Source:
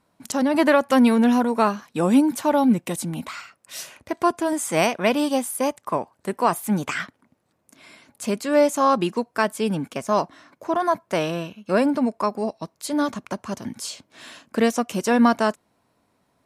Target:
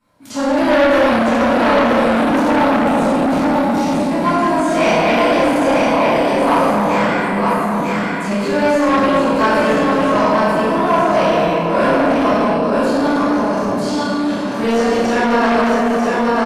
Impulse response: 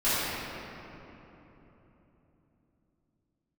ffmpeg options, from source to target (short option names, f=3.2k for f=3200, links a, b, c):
-filter_complex "[0:a]asplit=2[a][b];[b]adelay=30,volume=-3dB[c];[a][c]amix=inputs=2:normalize=0,aecho=1:1:946:0.631[d];[1:a]atrim=start_sample=2205,asetrate=39690,aresample=44100[e];[d][e]afir=irnorm=-1:irlink=0,asplit=2[f][g];[g]acontrast=39,volume=-1dB[h];[f][h]amix=inputs=2:normalize=0,asettb=1/sr,asplit=3[i][j][k];[i]atrim=end=12.584[l];[j]atrim=start=12.58:end=13.09,asetpts=PTS-STARTPTS,afade=t=in:d=0.004:c=qsin,afade=t=out:st=0.506:d=0.004:c=qsin,equalizer=f=2.1k:w=5.9:g=-6.5[m];[k]atrim=start=13.086[n];[l][m]acrossfade=d=0.004:c1=hsin:c2=qsin[o];[o][n]acrossfade=d=0.004:c1=qsin:c2=hsin,acrossover=split=390|6300[p][q][r];[p]asoftclip=type=tanh:threshold=-3.5dB[s];[r]acompressor=threshold=-31dB:ratio=6[t];[s][q][t]amix=inputs=3:normalize=0,volume=-14.5dB"